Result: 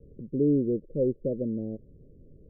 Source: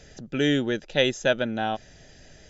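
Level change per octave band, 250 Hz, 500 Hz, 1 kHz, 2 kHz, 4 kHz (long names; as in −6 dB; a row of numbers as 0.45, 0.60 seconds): 0.0 dB, −3.0 dB, below −35 dB, below −40 dB, below −40 dB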